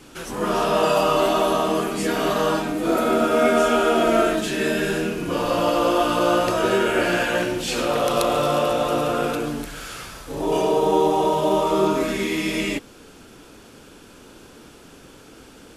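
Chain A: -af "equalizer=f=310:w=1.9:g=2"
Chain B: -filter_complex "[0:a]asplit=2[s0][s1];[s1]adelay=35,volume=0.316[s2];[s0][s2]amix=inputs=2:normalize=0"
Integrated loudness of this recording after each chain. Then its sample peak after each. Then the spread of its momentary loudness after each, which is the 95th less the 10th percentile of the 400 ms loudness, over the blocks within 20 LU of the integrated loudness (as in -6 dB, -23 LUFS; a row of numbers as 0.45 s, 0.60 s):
-20.5 LUFS, -20.5 LUFS; -5.5 dBFS, -5.0 dBFS; 7 LU, 8 LU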